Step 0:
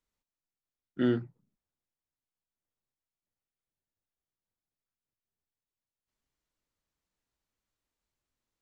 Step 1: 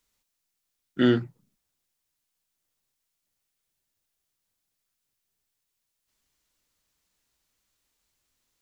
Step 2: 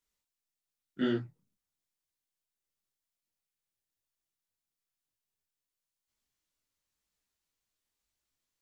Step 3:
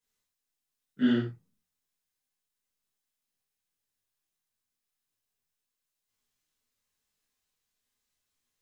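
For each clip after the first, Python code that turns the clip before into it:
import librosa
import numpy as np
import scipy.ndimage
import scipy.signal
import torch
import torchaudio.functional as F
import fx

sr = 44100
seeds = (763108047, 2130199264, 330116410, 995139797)

y1 = fx.high_shelf(x, sr, hz=2100.0, db=9.5)
y1 = y1 * 10.0 ** (6.0 / 20.0)
y2 = fx.detune_double(y1, sr, cents=34)
y2 = y2 * 10.0 ** (-6.5 / 20.0)
y3 = fx.rev_gated(y2, sr, seeds[0], gate_ms=140, shape='falling', drr_db=-8.0)
y3 = y3 * 10.0 ** (-5.5 / 20.0)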